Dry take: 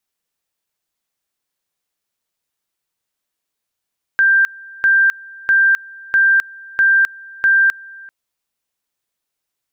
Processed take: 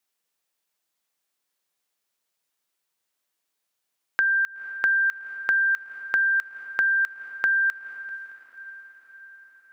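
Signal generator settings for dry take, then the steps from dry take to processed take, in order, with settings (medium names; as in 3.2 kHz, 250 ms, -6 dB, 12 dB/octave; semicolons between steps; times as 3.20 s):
two-level tone 1.58 kHz -9 dBFS, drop 24.5 dB, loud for 0.26 s, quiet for 0.39 s, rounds 6
compression 6:1, threshold -21 dBFS; high-pass 270 Hz 6 dB/octave; echo that smears into a reverb 504 ms, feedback 59%, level -16 dB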